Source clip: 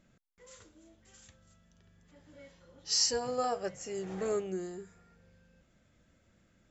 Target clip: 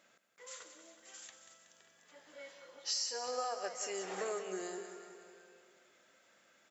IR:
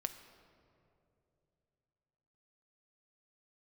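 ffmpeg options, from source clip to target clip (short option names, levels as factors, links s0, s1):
-af "highpass=620,acompressor=threshold=0.00794:ratio=6,aecho=1:1:186|372|558|744|930|1116|1302:0.316|0.19|0.114|0.0683|0.041|0.0246|0.0148,volume=2.11"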